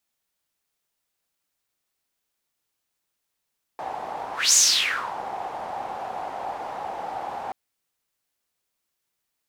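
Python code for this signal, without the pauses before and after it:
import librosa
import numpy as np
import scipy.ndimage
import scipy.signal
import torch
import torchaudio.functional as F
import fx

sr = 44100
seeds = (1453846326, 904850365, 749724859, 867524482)

y = fx.whoosh(sr, seeds[0], length_s=3.73, peak_s=0.75, rise_s=0.22, fall_s=0.65, ends_hz=790.0, peak_hz=6800.0, q=5.8, swell_db=16)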